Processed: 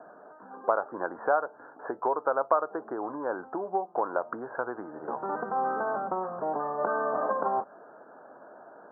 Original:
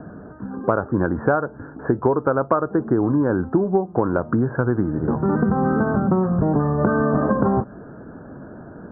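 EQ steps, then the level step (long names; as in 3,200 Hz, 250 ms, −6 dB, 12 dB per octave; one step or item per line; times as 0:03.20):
four-pole ladder band-pass 930 Hz, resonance 30%
+6.5 dB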